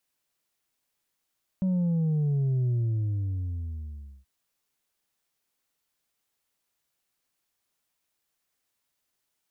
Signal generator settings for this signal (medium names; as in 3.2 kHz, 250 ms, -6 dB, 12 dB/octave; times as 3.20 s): sub drop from 190 Hz, over 2.63 s, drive 3 dB, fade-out 1.57 s, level -23 dB